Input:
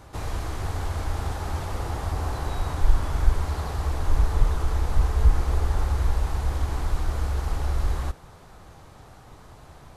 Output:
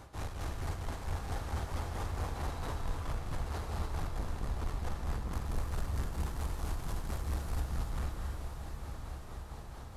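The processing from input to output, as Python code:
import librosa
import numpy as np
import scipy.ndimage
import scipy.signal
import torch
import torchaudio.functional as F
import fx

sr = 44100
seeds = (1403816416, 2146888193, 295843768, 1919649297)

y = fx.high_shelf(x, sr, hz=7600.0, db=8.5, at=(5.33, 7.61))
y = 10.0 ** (-30.0 / 20.0) * np.tanh(y / 10.0 ** (-30.0 / 20.0))
y = y * (1.0 - 0.65 / 2.0 + 0.65 / 2.0 * np.cos(2.0 * np.pi * 4.5 * (np.arange(len(y)) / sr)))
y = fx.echo_diffused(y, sr, ms=946, feedback_pct=56, wet_db=-8.0)
y = fx.rev_gated(y, sr, seeds[0], gate_ms=320, shape='rising', drr_db=3.5)
y = y * 10.0 ** (-2.5 / 20.0)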